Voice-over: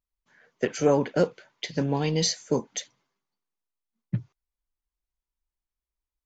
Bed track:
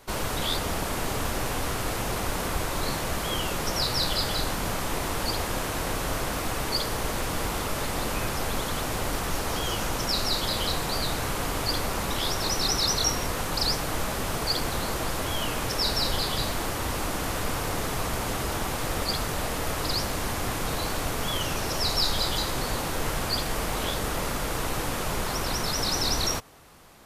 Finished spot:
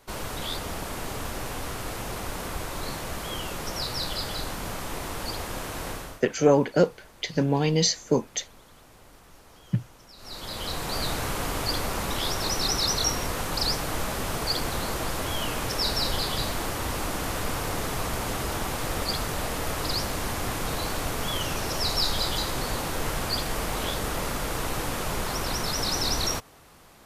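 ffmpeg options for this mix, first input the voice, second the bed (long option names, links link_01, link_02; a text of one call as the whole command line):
ffmpeg -i stem1.wav -i stem2.wav -filter_complex "[0:a]adelay=5600,volume=2.5dB[link_01];[1:a]volume=18.5dB,afade=type=out:start_time=5.89:duration=0.33:silence=0.112202,afade=type=in:start_time=10.17:duration=0.88:silence=0.0707946[link_02];[link_01][link_02]amix=inputs=2:normalize=0" out.wav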